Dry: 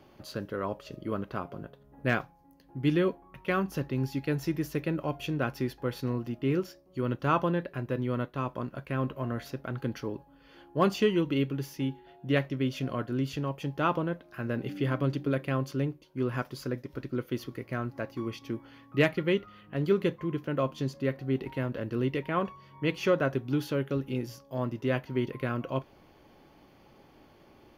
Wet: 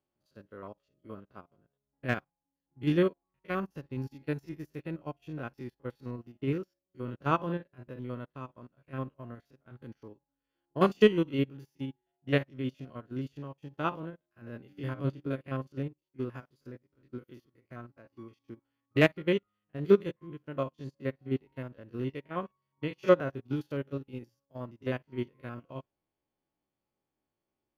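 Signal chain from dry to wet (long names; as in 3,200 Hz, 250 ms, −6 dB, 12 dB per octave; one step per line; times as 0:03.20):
spectrum averaged block by block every 50 ms
expander for the loud parts 2.5 to 1, over −45 dBFS
level +6.5 dB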